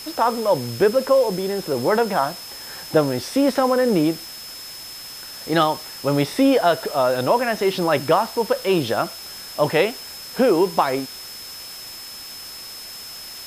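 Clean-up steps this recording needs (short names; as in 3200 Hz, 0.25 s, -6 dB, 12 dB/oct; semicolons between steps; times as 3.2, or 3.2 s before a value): notch 5200 Hz, Q 30; noise print and reduce 28 dB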